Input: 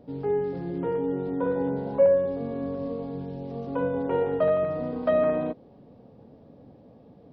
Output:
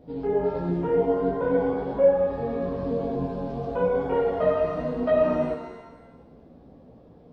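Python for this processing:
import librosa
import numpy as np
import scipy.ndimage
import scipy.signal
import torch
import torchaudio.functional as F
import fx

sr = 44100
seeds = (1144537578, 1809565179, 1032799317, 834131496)

p1 = fx.low_shelf(x, sr, hz=73.0, db=7.0)
p2 = fx.rider(p1, sr, range_db=4, speed_s=0.5)
p3 = p1 + (p2 * librosa.db_to_amplitude(-0.5))
p4 = fx.chorus_voices(p3, sr, voices=4, hz=1.2, base_ms=15, depth_ms=3.0, mix_pct=50)
p5 = fx.rev_shimmer(p4, sr, seeds[0], rt60_s=1.0, semitones=7, shimmer_db=-8, drr_db=5.0)
y = p5 * librosa.db_to_amplitude(-2.5)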